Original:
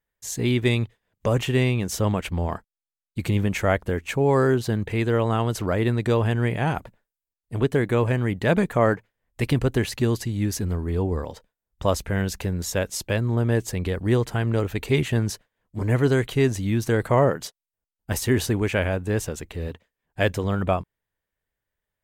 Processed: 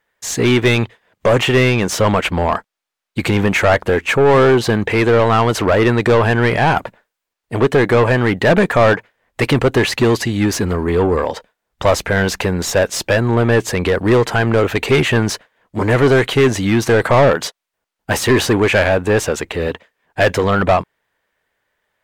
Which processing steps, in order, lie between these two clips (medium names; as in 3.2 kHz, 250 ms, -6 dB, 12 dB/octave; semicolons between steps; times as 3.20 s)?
overdrive pedal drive 23 dB, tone 2.2 kHz, clips at -7 dBFS; trim +4 dB